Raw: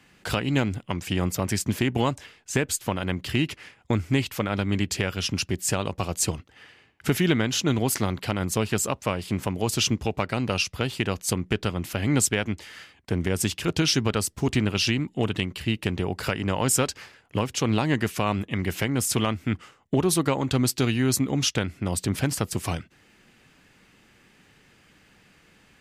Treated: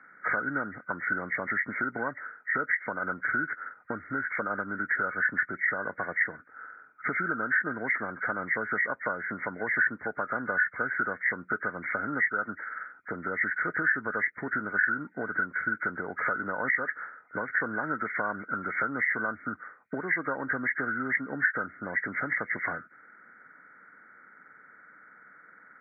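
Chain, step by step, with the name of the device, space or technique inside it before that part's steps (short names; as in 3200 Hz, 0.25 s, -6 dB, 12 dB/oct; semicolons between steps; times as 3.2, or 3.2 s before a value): hearing aid with frequency lowering (nonlinear frequency compression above 1200 Hz 4:1; compressor 4:1, threshold -25 dBFS, peak gain reduction 12 dB; speaker cabinet 320–5500 Hz, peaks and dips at 370 Hz -6 dB, 800 Hz -4 dB, 1500 Hz +5 dB, 3300 Hz -10 dB)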